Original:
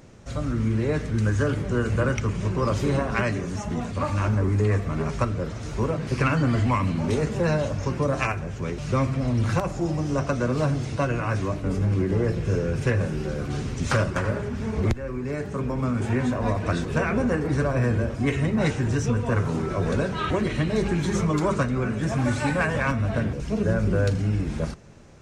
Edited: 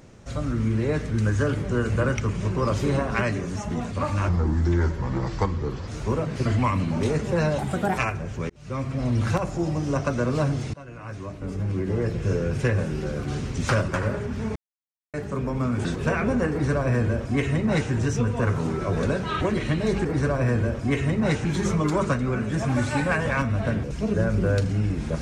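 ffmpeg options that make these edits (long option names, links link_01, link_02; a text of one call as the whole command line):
ffmpeg -i in.wav -filter_complex "[0:a]asplit=13[link_01][link_02][link_03][link_04][link_05][link_06][link_07][link_08][link_09][link_10][link_11][link_12][link_13];[link_01]atrim=end=4.294[link_14];[link_02]atrim=start=4.29:end=5.59,asetpts=PTS-STARTPTS,asetrate=36162,aresample=44100[link_15];[link_03]atrim=start=5.586:end=6.172[link_16];[link_04]atrim=start=6.528:end=7.664[link_17];[link_05]atrim=start=7.66:end=8.2,asetpts=PTS-STARTPTS,asetrate=60858,aresample=44100[link_18];[link_06]atrim=start=8.196:end=8.72,asetpts=PTS-STARTPTS,afade=type=out:start_time=0.52:duration=0.004:curve=hsin[link_19];[link_07]atrim=start=8.72:end=10.96,asetpts=PTS-STARTPTS,afade=type=in:duration=0.59,afade=type=out:start_time=2.236:duration=0.004:curve=hsin:silence=0.0794328[link_20];[link_08]atrim=start=10.96:end=14.78,asetpts=PTS-STARTPTS,afade=type=in:duration=1.6:silence=0.0794328,afade=type=out:start_time=3.816:duration=0.004:curve=hsin[link_21];[link_09]atrim=start=14.78:end=15.36,asetpts=PTS-STARTPTS,volume=0[link_22];[link_10]atrim=start=15.36:end=16.072,asetpts=PTS-STARTPTS,afade=type=in:duration=0.004:curve=hsin[link_23];[link_11]atrim=start=16.738:end=20.942[link_24];[link_12]atrim=start=17.398:end=18.802[link_25];[link_13]atrim=start=20.938[link_26];[link_14][link_15]acrossfade=duration=0.004:curve1=hsin:curve2=hsin[link_27];[link_27][link_16]acrossfade=duration=0.004:curve1=hsin:curve2=hsin[link_28];[link_28][link_17]acrossfade=duration=0.004:curve1=hsin:curve2=hsin[link_29];[link_29][link_18]acrossfade=duration=0.004:curve1=hsin:curve2=hsin[link_30];[link_19][link_20][link_21][link_22][link_23]concat=n=5:v=0:a=1[link_31];[link_30][link_31]acrossfade=duration=0.004:curve1=hsin:curve2=hsin[link_32];[link_32][link_24]acrossfade=duration=0.004:curve1=hsin:curve2=hsin[link_33];[link_33][link_25]acrossfade=duration=0.004:curve1=hsin:curve2=hsin[link_34];[link_34][link_26]acrossfade=duration=0.004:curve1=hsin:curve2=hsin" out.wav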